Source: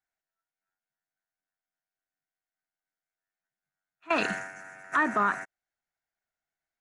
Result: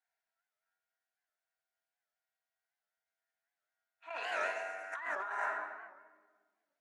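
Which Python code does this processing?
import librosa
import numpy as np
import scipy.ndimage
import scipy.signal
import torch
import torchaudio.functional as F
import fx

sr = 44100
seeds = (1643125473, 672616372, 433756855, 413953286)

y = scipy.signal.sosfilt(scipy.signal.butter(4, 560.0, 'highpass', fs=sr, output='sos'), x)
y = fx.notch(y, sr, hz=1200.0, q=7.7)
y = fx.room_shoebox(y, sr, seeds[0], volume_m3=1300.0, walls='mixed', distance_m=1.7)
y = fx.over_compress(y, sr, threshold_db=-33.0, ratio=-1.0)
y = fx.high_shelf(y, sr, hz=4500.0, db=-9.0)
y = fx.record_warp(y, sr, rpm=78.0, depth_cents=160.0)
y = y * librosa.db_to_amplitude(-4.0)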